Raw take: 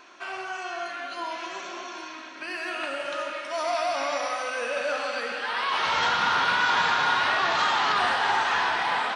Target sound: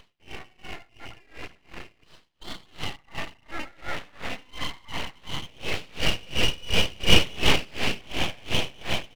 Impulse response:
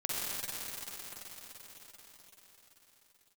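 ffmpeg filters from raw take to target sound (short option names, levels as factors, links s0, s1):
-filter_complex "[0:a]asplit=2[s0][s1];[s1]aecho=0:1:249:0.0668[s2];[s0][s2]amix=inputs=2:normalize=0,acompressor=mode=upward:threshold=0.0251:ratio=2.5,asplit=2[s3][s4];[s4]aecho=0:1:93:0.398[s5];[s3][s5]amix=inputs=2:normalize=0,afwtdn=0.0316,asettb=1/sr,asplit=3[s6][s7][s8];[s6]atrim=end=7.004[s9];[s7]atrim=start=7:end=7.65,asetpts=PTS-STARTPTS,afade=t=in:d=0.004:c=qsin,afade=t=out:st=0.646:d=0.004:c=qsin,acontrast=52[s10];[s8]atrim=start=7.646[s11];[s9][s10]acrossfade=d=0.004:c1=hsin:c2=qsin[s12];[s12][s11]acrossfade=d=0.004:c1=qsin:c2=hsin,equalizer=f=1500:w=5.1:g=12.5,aresample=8000,aresample=44100,asettb=1/sr,asplit=3[s13][s14][s15];[s13]atrim=end=1.154[s16];[s14]atrim=start=1.15:end=2.34,asetpts=PTS-STARTPTS,afade=t=in:d=0.004:c=qsin,afade=t=out:st=1.186:d=0.004:c=qsin,highshelf=f=2700:g=10[s17];[s15]atrim=start=2.336[s18];[s16][s17]acrossfade=d=0.004:c1=hsin:c2=qsin[s19];[s19][s18]acrossfade=d=0.004:c1=qsin:c2=hsin,aeval=exprs='abs(val(0))':c=same,aeval=exprs='val(0)*pow(10,-28*(0.5-0.5*cos(2*PI*2.8*n/s))/20)':c=same"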